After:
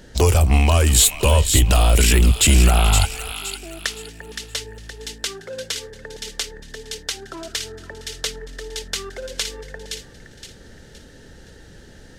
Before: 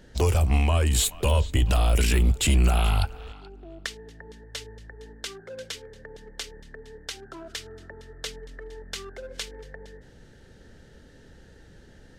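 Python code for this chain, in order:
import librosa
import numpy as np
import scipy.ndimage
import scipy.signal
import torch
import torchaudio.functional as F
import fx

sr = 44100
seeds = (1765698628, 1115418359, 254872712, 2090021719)

p1 = fx.bass_treble(x, sr, bass_db=-1, treble_db=4)
p2 = p1 + fx.echo_wet_highpass(p1, sr, ms=518, feedback_pct=35, hz=1900.0, wet_db=-5.5, dry=0)
y = F.gain(torch.from_numpy(p2), 7.0).numpy()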